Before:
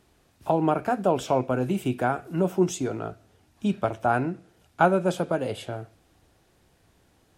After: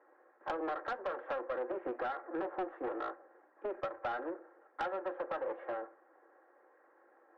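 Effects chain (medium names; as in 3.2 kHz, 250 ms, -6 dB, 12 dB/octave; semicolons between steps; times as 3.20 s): comb filter that takes the minimum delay 3.7 ms; Chebyshev band-pass 350–1800 Hz, order 4; compression 6:1, threshold -37 dBFS, peak gain reduction 16.5 dB; saturation -34 dBFS, distortion -15 dB; on a send: reverberation RT60 0.25 s, pre-delay 4 ms, DRR 19 dB; on the sum: trim +4.5 dB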